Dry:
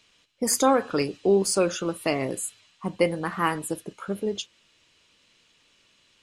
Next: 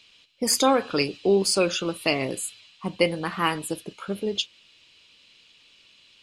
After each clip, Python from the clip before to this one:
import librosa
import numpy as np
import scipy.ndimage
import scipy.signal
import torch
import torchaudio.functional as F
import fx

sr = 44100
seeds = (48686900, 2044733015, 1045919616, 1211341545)

y = fx.band_shelf(x, sr, hz=3400.0, db=8.0, octaves=1.3)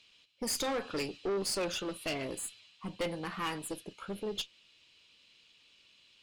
y = fx.tube_stage(x, sr, drive_db=23.0, bias=0.4)
y = F.gain(torch.from_numpy(y), -6.0).numpy()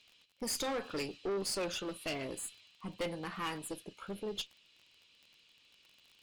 y = fx.dmg_crackle(x, sr, seeds[0], per_s=30.0, level_db=-45.0)
y = F.gain(torch.from_numpy(y), -2.5).numpy()